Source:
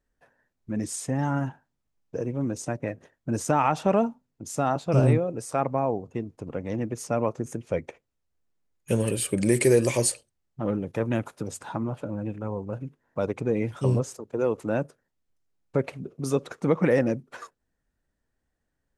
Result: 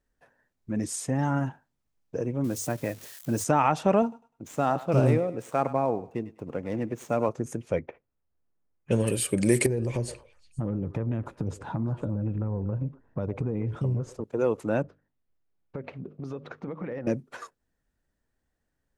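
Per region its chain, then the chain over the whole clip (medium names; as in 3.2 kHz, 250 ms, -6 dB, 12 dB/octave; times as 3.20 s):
2.44–3.44 s: zero-crossing glitches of -33.5 dBFS + hum notches 50/100 Hz
4.02–7.29 s: median filter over 9 samples + bass shelf 68 Hz -11.5 dB + thinning echo 101 ms, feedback 34%, high-pass 770 Hz, level -13.5 dB
7.79–9.07 s: distance through air 60 m + level-controlled noise filter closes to 1.6 kHz, open at -22 dBFS
9.66–14.24 s: RIAA curve playback + compression, threshold -25 dBFS + repeats whose band climbs or falls 120 ms, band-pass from 470 Hz, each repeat 1.4 oct, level -11 dB
14.82–17.07 s: distance through air 260 m + hum notches 50/100/150/200/250/300 Hz + compression, threshold -32 dBFS
whole clip: none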